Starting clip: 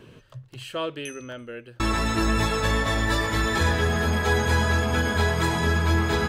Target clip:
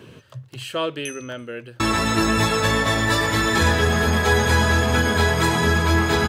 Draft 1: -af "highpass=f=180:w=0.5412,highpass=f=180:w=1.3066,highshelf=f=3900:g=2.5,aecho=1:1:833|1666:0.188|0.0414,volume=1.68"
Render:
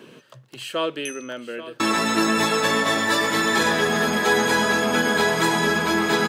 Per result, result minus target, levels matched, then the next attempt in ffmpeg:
125 Hz band -11.5 dB; echo 445 ms early
-af "highpass=f=73:w=0.5412,highpass=f=73:w=1.3066,highshelf=f=3900:g=2.5,aecho=1:1:833|1666:0.188|0.0414,volume=1.68"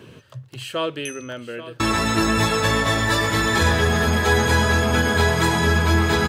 echo 445 ms early
-af "highpass=f=73:w=0.5412,highpass=f=73:w=1.3066,highshelf=f=3900:g=2.5,aecho=1:1:1278|2556:0.188|0.0414,volume=1.68"

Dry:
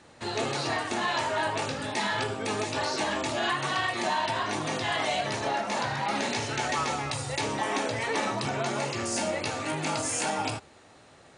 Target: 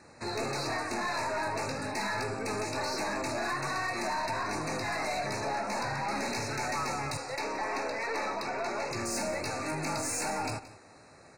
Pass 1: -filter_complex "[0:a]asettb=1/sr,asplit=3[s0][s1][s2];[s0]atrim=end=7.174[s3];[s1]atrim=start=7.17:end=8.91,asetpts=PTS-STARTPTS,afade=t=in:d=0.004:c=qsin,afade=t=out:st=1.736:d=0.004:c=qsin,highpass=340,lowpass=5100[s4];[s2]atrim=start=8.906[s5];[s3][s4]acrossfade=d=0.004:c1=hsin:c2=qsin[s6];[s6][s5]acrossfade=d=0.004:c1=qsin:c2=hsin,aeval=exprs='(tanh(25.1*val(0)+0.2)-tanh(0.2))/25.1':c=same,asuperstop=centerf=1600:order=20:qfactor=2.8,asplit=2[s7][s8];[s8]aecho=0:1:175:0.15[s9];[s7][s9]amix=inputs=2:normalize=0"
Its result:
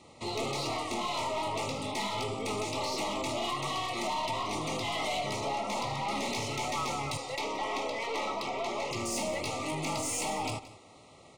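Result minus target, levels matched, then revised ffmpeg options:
4 kHz band +4.0 dB
-filter_complex "[0:a]asettb=1/sr,asplit=3[s0][s1][s2];[s0]atrim=end=7.174[s3];[s1]atrim=start=7.17:end=8.91,asetpts=PTS-STARTPTS,afade=t=in:d=0.004:c=qsin,afade=t=out:st=1.736:d=0.004:c=qsin,highpass=340,lowpass=5100[s4];[s2]atrim=start=8.906[s5];[s3][s4]acrossfade=d=0.004:c1=hsin:c2=qsin[s6];[s6][s5]acrossfade=d=0.004:c1=qsin:c2=hsin,aeval=exprs='(tanh(25.1*val(0)+0.2)-tanh(0.2))/25.1':c=same,asuperstop=centerf=3200:order=20:qfactor=2.8,asplit=2[s7][s8];[s8]aecho=0:1:175:0.15[s9];[s7][s9]amix=inputs=2:normalize=0"

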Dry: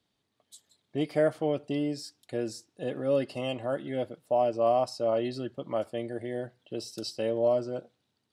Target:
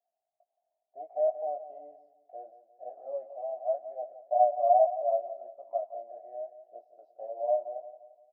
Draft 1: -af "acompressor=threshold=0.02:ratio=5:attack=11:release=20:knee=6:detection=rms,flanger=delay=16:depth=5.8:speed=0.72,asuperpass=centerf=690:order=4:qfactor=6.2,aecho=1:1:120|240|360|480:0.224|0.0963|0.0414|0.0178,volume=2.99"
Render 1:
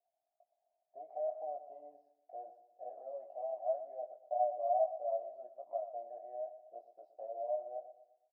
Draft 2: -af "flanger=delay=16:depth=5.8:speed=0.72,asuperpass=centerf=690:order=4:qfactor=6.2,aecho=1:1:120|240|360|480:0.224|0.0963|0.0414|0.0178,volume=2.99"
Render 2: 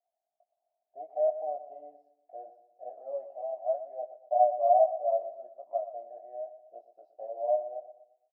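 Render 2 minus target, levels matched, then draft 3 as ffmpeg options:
echo 53 ms early
-af "flanger=delay=16:depth=5.8:speed=0.72,asuperpass=centerf=690:order=4:qfactor=6.2,aecho=1:1:173|346|519|692:0.224|0.0963|0.0414|0.0178,volume=2.99"

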